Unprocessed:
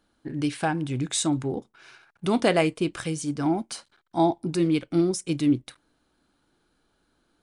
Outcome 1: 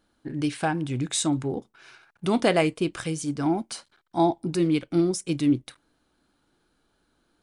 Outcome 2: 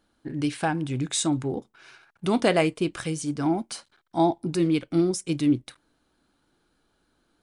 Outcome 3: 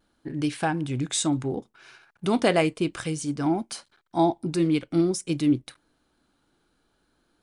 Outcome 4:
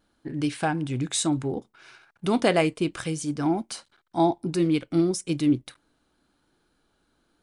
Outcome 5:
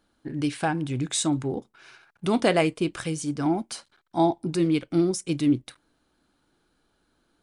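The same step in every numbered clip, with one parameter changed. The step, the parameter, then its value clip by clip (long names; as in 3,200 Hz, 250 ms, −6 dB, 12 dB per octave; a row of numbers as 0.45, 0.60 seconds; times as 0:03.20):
pitch vibrato, speed: 2.9, 6.4, 0.58, 0.96, 14 Hertz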